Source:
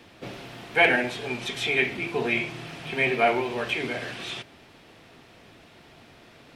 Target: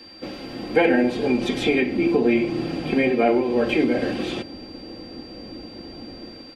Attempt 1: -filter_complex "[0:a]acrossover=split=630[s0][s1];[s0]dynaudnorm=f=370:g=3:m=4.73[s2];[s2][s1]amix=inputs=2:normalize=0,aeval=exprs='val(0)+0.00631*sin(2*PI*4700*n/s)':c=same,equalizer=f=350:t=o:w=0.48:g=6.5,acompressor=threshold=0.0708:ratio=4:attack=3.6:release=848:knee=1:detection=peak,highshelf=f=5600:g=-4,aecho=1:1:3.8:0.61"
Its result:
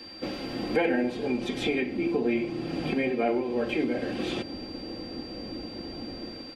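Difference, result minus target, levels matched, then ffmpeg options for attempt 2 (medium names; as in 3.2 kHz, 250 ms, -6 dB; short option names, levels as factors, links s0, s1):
compression: peak gain reduction +7.5 dB
-filter_complex "[0:a]acrossover=split=630[s0][s1];[s0]dynaudnorm=f=370:g=3:m=4.73[s2];[s2][s1]amix=inputs=2:normalize=0,aeval=exprs='val(0)+0.00631*sin(2*PI*4700*n/s)':c=same,equalizer=f=350:t=o:w=0.48:g=6.5,acompressor=threshold=0.224:ratio=4:attack=3.6:release=848:knee=1:detection=peak,highshelf=f=5600:g=-4,aecho=1:1:3.8:0.61"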